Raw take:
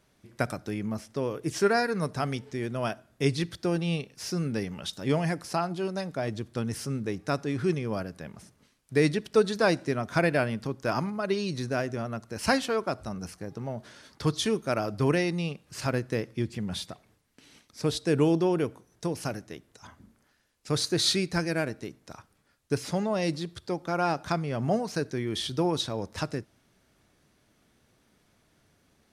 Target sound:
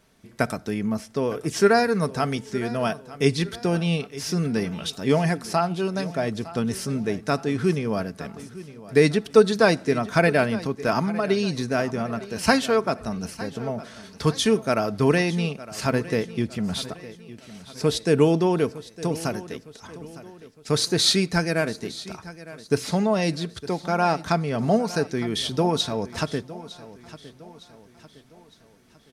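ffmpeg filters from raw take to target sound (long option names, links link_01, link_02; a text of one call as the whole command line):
ffmpeg -i in.wav -filter_complex "[0:a]aecho=1:1:4.5:0.32,asplit=2[link_01][link_02];[link_02]aecho=0:1:909|1818|2727|3636:0.141|0.0636|0.0286|0.0129[link_03];[link_01][link_03]amix=inputs=2:normalize=0,volume=5dB" out.wav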